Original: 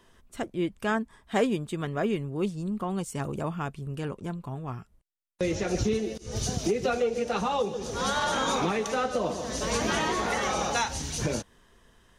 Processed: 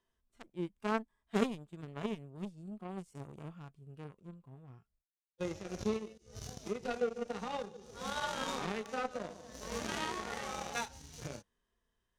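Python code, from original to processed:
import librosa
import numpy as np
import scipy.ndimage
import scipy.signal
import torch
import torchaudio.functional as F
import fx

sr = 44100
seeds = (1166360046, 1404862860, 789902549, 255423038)

y = fx.cheby_harmonics(x, sr, harmonics=(3,), levels_db=(-10,), full_scale_db=-12.5)
y = fx.hpss(y, sr, part='percussive', gain_db=-17)
y = F.gain(torch.from_numpy(y), 6.5).numpy()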